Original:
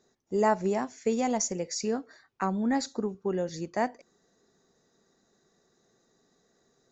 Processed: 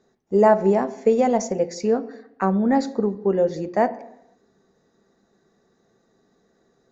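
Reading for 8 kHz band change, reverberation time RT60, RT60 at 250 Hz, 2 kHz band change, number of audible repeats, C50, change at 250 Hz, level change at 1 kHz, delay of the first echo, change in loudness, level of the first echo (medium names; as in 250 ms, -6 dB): no reading, 0.80 s, 0.80 s, +4.5 dB, no echo, 16.5 dB, +8.0 dB, +7.5 dB, no echo, +9.0 dB, no echo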